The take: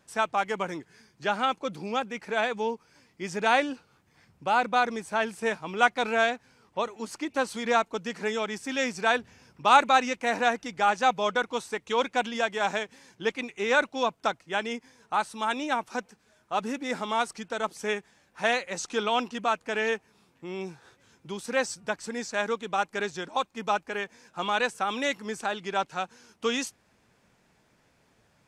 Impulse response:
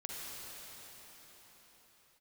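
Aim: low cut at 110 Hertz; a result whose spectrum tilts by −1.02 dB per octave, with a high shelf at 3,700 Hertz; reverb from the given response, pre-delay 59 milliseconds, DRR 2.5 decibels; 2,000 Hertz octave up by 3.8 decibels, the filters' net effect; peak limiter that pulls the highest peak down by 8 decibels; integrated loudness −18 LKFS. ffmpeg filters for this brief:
-filter_complex "[0:a]highpass=110,equalizer=frequency=2000:width_type=o:gain=7,highshelf=frequency=3700:gain=-7.5,alimiter=limit=-13dB:level=0:latency=1,asplit=2[link_01][link_02];[1:a]atrim=start_sample=2205,adelay=59[link_03];[link_02][link_03]afir=irnorm=-1:irlink=0,volume=-3.5dB[link_04];[link_01][link_04]amix=inputs=2:normalize=0,volume=9dB"

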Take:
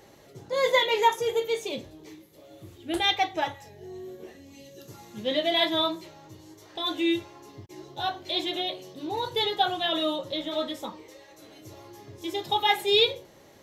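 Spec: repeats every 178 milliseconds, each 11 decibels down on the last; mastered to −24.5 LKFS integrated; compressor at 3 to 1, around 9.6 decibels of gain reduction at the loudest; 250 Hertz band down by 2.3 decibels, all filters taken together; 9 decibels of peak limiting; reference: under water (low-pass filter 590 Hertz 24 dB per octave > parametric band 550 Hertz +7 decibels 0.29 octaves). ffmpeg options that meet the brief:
ffmpeg -i in.wav -af "equalizer=frequency=250:width_type=o:gain=-4,acompressor=threshold=-30dB:ratio=3,alimiter=level_in=3.5dB:limit=-24dB:level=0:latency=1,volume=-3.5dB,lowpass=frequency=590:width=0.5412,lowpass=frequency=590:width=1.3066,equalizer=frequency=550:width_type=o:width=0.29:gain=7,aecho=1:1:178|356|534:0.282|0.0789|0.0221,volume=16dB" out.wav

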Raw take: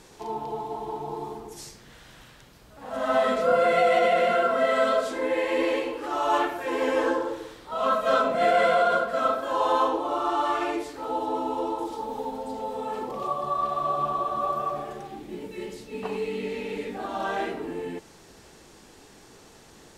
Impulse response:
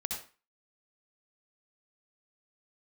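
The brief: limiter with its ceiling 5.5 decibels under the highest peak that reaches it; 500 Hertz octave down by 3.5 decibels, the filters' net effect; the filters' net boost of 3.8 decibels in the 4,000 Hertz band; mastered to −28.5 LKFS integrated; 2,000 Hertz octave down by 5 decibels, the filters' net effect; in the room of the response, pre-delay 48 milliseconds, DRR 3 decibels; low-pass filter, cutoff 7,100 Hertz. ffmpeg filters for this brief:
-filter_complex "[0:a]lowpass=7100,equalizer=frequency=500:width_type=o:gain=-4,equalizer=frequency=2000:width_type=o:gain=-8.5,equalizer=frequency=4000:width_type=o:gain=8.5,alimiter=limit=-18dB:level=0:latency=1,asplit=2[link_01][link_02];[1:a]atrim=start_sample=2205,adelay=48[link_03];[link_02][link_03]afir=irnorm=-1:irlink=0,volume=-5dB[link_04];[link_01][link_04]amix=inputs=2:normalize=0"

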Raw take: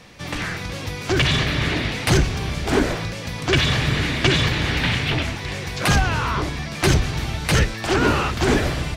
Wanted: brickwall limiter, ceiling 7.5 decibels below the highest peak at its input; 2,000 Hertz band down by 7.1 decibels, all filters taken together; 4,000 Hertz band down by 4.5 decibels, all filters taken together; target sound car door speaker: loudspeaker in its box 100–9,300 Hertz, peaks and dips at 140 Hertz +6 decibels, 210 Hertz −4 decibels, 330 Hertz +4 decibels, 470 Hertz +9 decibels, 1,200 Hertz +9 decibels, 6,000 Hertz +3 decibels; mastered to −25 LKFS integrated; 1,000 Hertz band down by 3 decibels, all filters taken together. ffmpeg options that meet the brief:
ffmpeg -i in.wav -af "equalizer=frequency=1000:width_type=o:gain=-7.5,equalizer=frequency=2000:width_type=o:gain=-7.5,equalizer=frequency=4000:width_type=o:gain=-3,alimiter=limit=-13.5dB:level=0:latency=1,highpass=100,equalizer=frequency=140:width_type=q:width=4:gain=6,equalizer=frequency=210:width_type=q:width=4:gain=-4,equalizer=frequency=330:width_type=q:width=4:gain=4,equalizer=frequency=470:width_type=q:width=4:gain=9,equalizer=frequency=1200:width_type=q:width=4:gain=9,equalizer=frequency=6000:width_type=q:width=4:gain=3,lowpass=frequency=9300:width=0.5412,lowpass=frequency=9300:width=1.3066,volume=-1.5dB" out.wav

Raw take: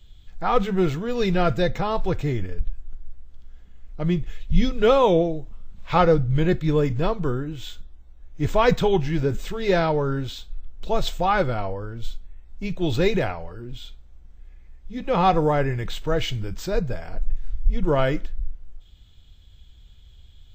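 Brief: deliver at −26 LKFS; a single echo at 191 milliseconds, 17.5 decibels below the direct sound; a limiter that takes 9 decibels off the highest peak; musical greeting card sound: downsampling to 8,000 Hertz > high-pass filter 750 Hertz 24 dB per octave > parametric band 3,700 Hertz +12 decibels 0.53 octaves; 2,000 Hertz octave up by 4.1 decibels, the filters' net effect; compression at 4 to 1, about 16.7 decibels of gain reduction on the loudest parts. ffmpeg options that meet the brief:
ffmpeg -i in.wav -af "equalizer=frequency=2000:width_type=o:gain=4,acompressor=threshold=-32dB:ratio=4,alimiter=level_in=4dB:limit=-24dB:level=0:latency=1,volume=-4dB,aecho=1:1:191:0.133,aresample=8000,aresample=44100,highpass=frequency=750:width=0.5412,highpass=frequency=750:width=1.3066,equalizer=frequency=3700:width_type=o:width=0.53:gain=12,volume=15.5dB" out.wav

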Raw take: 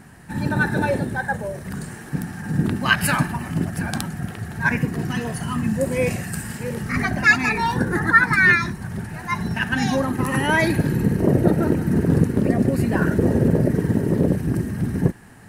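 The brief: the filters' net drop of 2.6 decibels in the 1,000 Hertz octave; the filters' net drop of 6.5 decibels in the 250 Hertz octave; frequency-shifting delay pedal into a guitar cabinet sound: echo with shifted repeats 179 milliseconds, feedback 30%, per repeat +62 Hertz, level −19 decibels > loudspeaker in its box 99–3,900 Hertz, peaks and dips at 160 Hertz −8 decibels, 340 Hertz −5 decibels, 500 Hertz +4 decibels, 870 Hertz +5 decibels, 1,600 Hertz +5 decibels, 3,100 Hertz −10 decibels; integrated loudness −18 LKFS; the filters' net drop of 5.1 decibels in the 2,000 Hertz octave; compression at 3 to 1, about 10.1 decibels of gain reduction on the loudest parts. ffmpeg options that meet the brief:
ffmpeg -i in.wav -filter_complex "[0:a]equalizer=frequency=250:width_type=o:gain=-4.5,equalizer=frequency=1000:width_type=o:gain=-4.5,equalizer=frequency=2000:width_type=o:gain=-9,acompressor=threshold=-29dB:ratio=3,asplit=4[link_01][link_02][link_03][link_04];[link_02]adelay=179,afreqshift=62,volume=-19dB[link_05];[link_03]adelay=358,afreqshift=124,volume=-29.5dB[link_06];[link_04]adelay=537,afreqshift=186,volume=-39.9dB[link_07];[link_01][link_05][link_06][link_07]amix=inputs=4:normalize=0,highpass=99,equalizer=frequency=160:width_type=q:width=4:gain=-8,equalizer=frequency=340:width_type=q:width=4:gain=-5,equalizer=frequency=500:width_type=q:width=4:gain=4,equalizer=frequency=870:width_type=q:width=4:gain=5,equalizer=frequency=1600:width_type=q:width=4:gain=5,equalizer=frequency=3100:width_type=q:width=4:gain=-10,lowpass=frequency=3900:width=0.5412,lowpass=frequency=3900:width=1.3066,volume=15dB" out.wav

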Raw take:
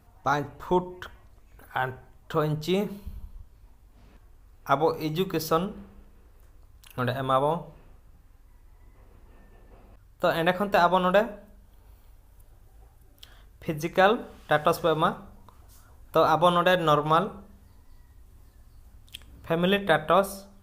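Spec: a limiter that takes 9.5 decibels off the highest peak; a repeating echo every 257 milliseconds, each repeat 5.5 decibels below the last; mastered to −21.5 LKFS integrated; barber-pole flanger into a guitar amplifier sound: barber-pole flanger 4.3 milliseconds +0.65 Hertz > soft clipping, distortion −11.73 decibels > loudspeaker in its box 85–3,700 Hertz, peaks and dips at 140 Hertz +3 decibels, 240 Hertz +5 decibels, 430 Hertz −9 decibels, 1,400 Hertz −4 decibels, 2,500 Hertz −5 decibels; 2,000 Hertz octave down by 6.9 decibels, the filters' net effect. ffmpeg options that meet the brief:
ffmpeg -i in.wav -filter_complex "[0:a]equalizer=frequency=2000:width_type=o:gain=-6,alimiter=limit=-17dB:level=0:latency=1,aecho=1:1:257|514|771|1028|1285|1542|1799:0.531|0.281|0.149|0.079|0.0419|0.0222|0.0118,asplit=2[link_01][link_02];[link_02]adelay=4.3,afreqshift=0.65[link_03];[link_01][link_03]amix=inputs=2:normalize=1,asoftclip=threshold=-27dB,highpass=85,equalizer=frequency=140:width_type=q:width=4:gain=3,equalizer=frequency=240:width_type=q:width=4:gain=5,equalizer=frequency=430:width_type=q:width=4:gain=-9,equalizer=frequency=1400:width_type=q:width=4:gain=-4,equalizer=frequency=2500:width_type=q:width=4:gain=-5,lowpass=frequency=3700:width=0.5412,lowpass=frequency=3700:width=1.3066,volume=15.5dB" out.wav

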